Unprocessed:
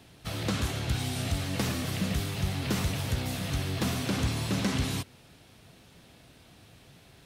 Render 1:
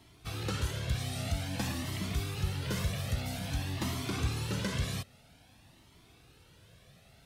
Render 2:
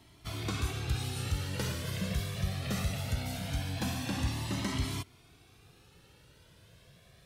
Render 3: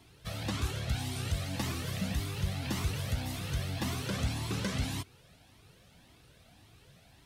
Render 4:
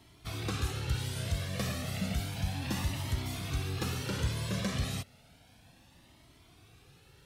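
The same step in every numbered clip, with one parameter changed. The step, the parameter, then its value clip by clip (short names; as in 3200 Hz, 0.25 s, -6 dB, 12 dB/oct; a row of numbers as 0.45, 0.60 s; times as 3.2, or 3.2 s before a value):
cascading flanger, rate: 0.51, 0.21, 1.8, 0.32 Hz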